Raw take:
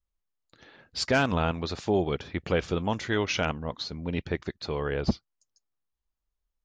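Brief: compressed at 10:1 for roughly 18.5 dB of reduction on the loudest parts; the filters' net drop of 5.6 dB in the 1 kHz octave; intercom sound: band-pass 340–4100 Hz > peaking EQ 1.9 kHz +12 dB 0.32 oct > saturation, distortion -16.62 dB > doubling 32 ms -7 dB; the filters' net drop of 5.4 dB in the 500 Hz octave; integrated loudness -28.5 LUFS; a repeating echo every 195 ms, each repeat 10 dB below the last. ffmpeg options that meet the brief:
-filter_complex "[0:a]equalizer=f=500:t=o:g=-3.5,equalizer=f=1000:t=o:g=-7.5,acompressor=threshold=0.0112:ratio=10,highpass=340,lowpass=4100,equalizer=f=1900:t=o:w=0.32:g=12,aecho=1:1:195|390|585|780:0.316|0.101|0.0324|0.0104,asoftclip=threshold=0.02,asplit=2[s0][s1];[s1]adelay=32,volume=0.447[s2];[s0][s2]amix=inputs=2:normalize=0,volume=7.08"

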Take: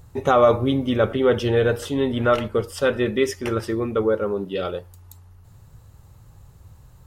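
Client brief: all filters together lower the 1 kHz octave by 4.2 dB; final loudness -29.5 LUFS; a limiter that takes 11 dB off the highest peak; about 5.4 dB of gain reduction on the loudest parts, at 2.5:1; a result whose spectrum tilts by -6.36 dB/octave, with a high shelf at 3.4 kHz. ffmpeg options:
-af "equalizer=f=1000:t=o:g=-5,highshelf=f=3400:g=-8.5,acompressor=threshold=0.0891:ratio=2.5,volume=1.26,alimiter=limit=0.0891:level=0:latency=1"

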